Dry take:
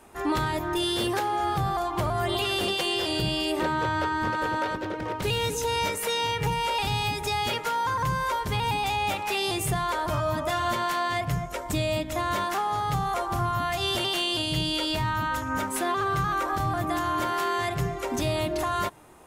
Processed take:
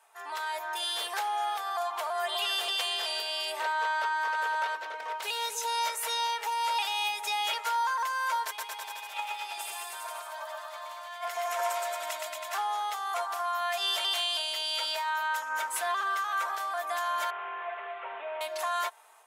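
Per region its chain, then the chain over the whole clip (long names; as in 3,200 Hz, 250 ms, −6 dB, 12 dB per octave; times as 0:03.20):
0:08.46–0:12.53: high-pass filter 420 Hz 6 dB per octave + compressor whose output falls as the input rises −36 dBFS, ratio −0.5 + bouncing-ball delay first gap 120 ms, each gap 0.9×, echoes 7, each echo −2 dB
0:17.30–0:18.41: linear delta modulator 16 kbit/s, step −39.5 dBFS + high-pass filter 310 Hz 24 dB per octave
whole clip: high-pass filter 690 Hz 24 dB per octave; comb filter 4.5 ms, depth 50%; automatic gain control gain up to 6 dB; level −8.5 dB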